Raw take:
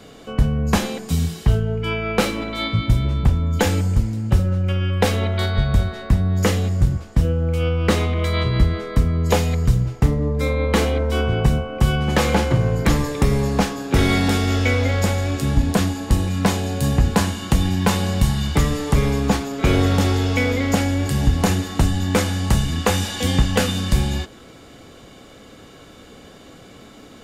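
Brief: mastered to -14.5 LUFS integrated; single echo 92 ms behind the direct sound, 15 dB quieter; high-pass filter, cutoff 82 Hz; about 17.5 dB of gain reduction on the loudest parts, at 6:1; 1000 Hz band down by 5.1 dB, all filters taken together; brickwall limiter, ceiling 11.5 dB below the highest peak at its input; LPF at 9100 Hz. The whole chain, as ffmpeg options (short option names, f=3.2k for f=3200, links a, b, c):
-af "highpass=82,lowpass=9.1k,equalizer=f=1k:t=o:g=-7,acompressor=threshold=-34dB:ratio=6,alimiter=level_in=4dB:limit=-24dB:level=0:latency=1,volume=-4dB,aecho=1:1:92:0.178,volume=24dB"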